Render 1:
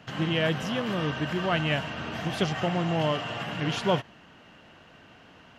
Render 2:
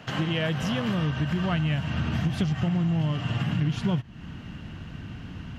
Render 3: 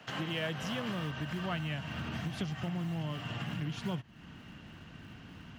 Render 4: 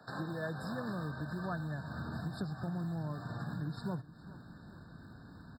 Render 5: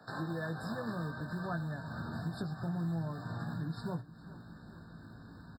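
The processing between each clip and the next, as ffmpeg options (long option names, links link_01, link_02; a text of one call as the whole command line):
ffmpeg -i in.wav -af "asubboost=boost=12:cutoff=170,acompressor=threshold=-29dB:ratio=6,volume=5.5dB" out.wav
ffmpeg -i in.wav -filter_complex "[0:a]lowshelf=frequency=170:gain=-10.5,acrossover=split=210|400|1200[link_01][link_02][link_03][link_04];[link_02]acrusher=samples=13:mix=1:aa=0.000001:lfo=1:lforange=20.8:lforate=3.2[link_05];[link_01][link_05][link_03][link_04]amix=inputs=4:normalize=0,volume=-6dB" out.wav
ffmpeg -i in.wav -af "aecho=1:1:416|832|1248|1664|2080:0.112|0.0628|0.0352|0.0197|0.011,afftfilt=real='re*eq(mod(floor(b*sr/1024/1800),2),0)':imag='im*eq(mod(floor(b*sr/1024/1800),2),0)':win_size=1024:overlap=0.75,volume=-2dB" out.wav
ffmpeg -i in.wav -filter_complex "[0:a]asplit=2[link_01][link_02];[link_02]adelay=18,volume=-7dB[link_03];[link_01][link_03]amix=inputs=2:normalize=0" out.wav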